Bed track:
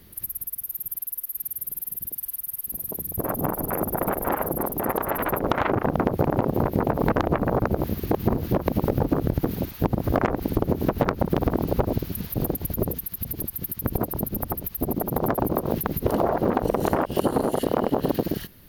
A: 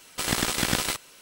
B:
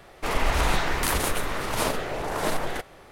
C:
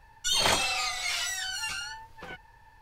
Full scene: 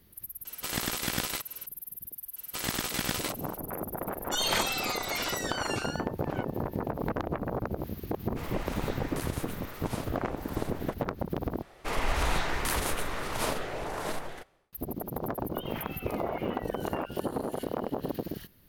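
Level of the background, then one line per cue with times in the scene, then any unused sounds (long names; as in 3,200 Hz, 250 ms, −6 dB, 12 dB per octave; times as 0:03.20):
bed track −10 dB
0:00.45: mix in A −6.5 dB + upward compression, threshold −35 dBFS
0:02.36: mix in A −6.5 dB + parametric band 13,000 Hz −4 dB 0.35 octaves
0:04.07: mix in C −4 dB + parametric band 1,400 Hz +2.5 dB
0:08.13: mix in B −14.5 dB
0:11.62: overwrite with B −5 dB + fade-out on the ending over 0.89 s
0:15.30: mix in C −14.5 dB + elliptic low-pass filter 3,000 Hz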